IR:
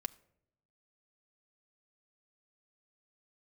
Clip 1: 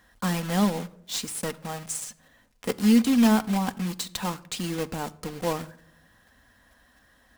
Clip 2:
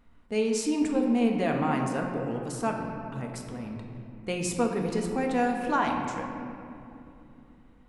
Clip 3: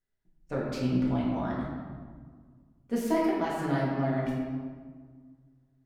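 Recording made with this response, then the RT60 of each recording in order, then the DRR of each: 1; 0.75, 2.9, 1.6 seconds; 9.0, 1.0, −6.0 decibels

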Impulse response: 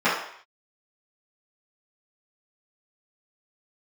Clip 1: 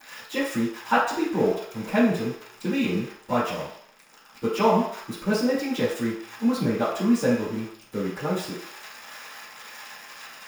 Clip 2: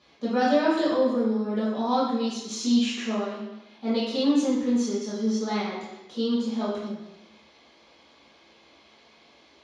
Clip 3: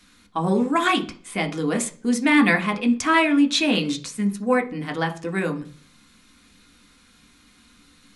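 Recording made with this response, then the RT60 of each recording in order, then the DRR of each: 1; non-exponential decay, 0.90 s, 0.40 s; −14.0, −10.0, 4.0 decibels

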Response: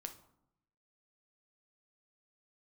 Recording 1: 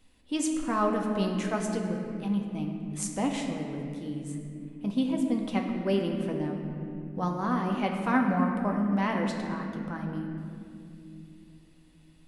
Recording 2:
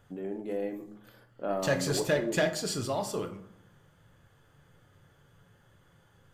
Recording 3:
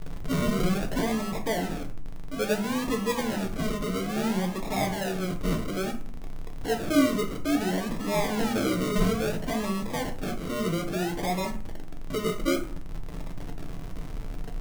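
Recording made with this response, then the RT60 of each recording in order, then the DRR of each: 2; 2.7, 0.75, 0.45 seconds; 0.5, 6.0, 3.0 decibels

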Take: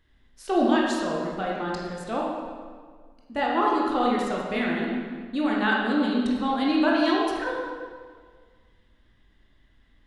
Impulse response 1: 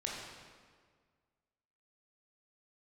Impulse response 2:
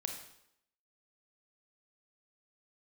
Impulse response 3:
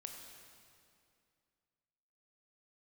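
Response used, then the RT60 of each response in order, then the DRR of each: 1; 1.7, 0.75, 2.4 seconds; −3.5, 3.0, 2.5 decibels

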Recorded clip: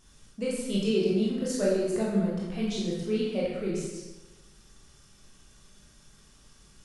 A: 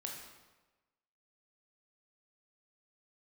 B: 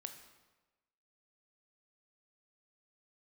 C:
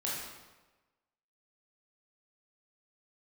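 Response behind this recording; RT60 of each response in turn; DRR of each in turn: C; 1.2, 1.2, 1.2 seconds; −0.5, 6.5, −6.0 decibels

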